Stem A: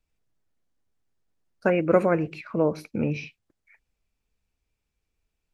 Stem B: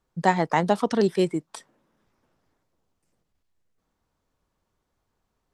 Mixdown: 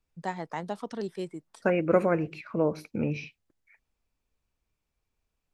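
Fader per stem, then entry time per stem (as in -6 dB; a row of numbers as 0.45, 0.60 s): -3.0, -13.0 dB; 0.00, 0.00 s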